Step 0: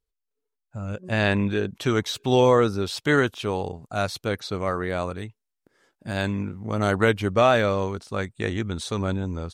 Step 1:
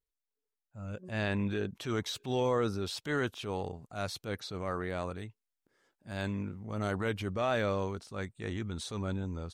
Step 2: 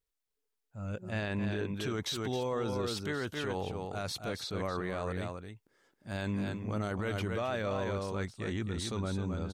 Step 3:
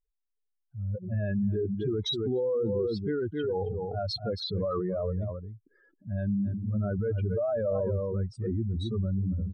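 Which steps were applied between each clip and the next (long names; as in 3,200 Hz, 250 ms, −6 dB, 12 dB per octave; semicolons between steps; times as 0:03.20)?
brickwall limiter −12.5 dBFS, peak gain reduction 5.5 dB; transient designer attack −7 dB, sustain +2 dB; level −8 dB
single-tap delay 268 ms −7 dB; brickwall limiter −28 dBFS, peak gain reduction 8.5 dB; level +2.5 dB
expanding power law on the bin magnitudes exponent 3.1; level +6 dB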